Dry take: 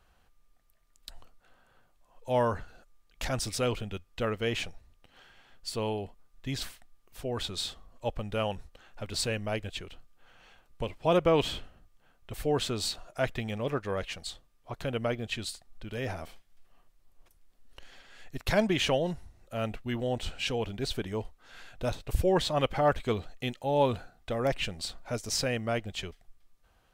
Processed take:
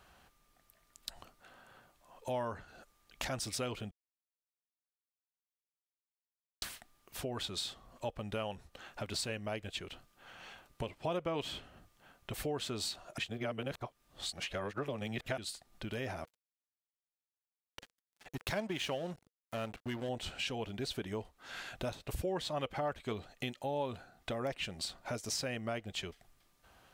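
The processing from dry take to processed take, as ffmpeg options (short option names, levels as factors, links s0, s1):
-filter_complex "[0:a]asettb=1/sr,asplit=3[s0][s1][s2];[s0]atrim=end=16.244[s3];[s1]atrim=start=16.24:end=20.09,asetpts=PTS-STARTPTS,afade=t=in:d=0.004:c=qsin,afade=t=out:st=3.846:d=0.004:c=qsin,aeval=exprs='sgn(val(0))*max(abs(val(0))-0.00794,0)':c=same[s4];[s2]atrim=start=20.086[s5];[s3][s4]acrossfade=d=0.004:c1=hsin:c2=qsin[s6];[s6][s5]acrossfade=d=0.004:c1=qsin:c2=hsin,asplit=5[s7][s8][s9][s10][s11];[s7]atrim=end=3.91,asetpts=PTS-STARTPTS,afade=t=out:st=3.906:d=0.004:c=hsin[s12];[s8]atrim=start=3.91:end=6.62,asetpts=PTS-STARTPTS,volume=0[s13];[s9]atrim=start=6.62:end=13.182,asetpts=PTS-STARTPTS,afade=t=in:d=0.004:c=hsin[s14];[s10]atrim=start=13.178:end=15.382,asetpts=PTS-STARTPTS,areverse[s15];[s11]atrim=start=15.378[s16];[s12][s13][s14]concat=n=3:v=0:a=1[s17];[s17][s15]acrossfade=d=0.004:c1=hsin:c2=hsin[s18];[s18][s16]acrossfade=d=0.004:c1=hsin:c2=hsin,highpass=f=120:p=1,bandreject=f=480:w=13,acompressor=threshold=0.00501:ratio=3,volume=2.11"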